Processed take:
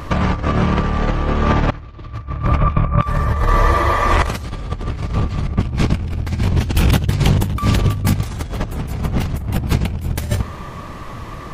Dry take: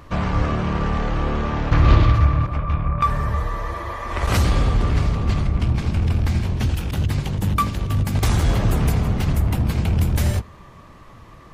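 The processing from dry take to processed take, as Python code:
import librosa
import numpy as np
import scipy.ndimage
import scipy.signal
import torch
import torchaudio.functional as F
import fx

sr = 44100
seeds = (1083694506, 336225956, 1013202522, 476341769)

y = fx.over_compress(x, sr, threshold_db=-24.0, ratio=-0.5)
y = y * 10.0 ** (7.5 / 20.0)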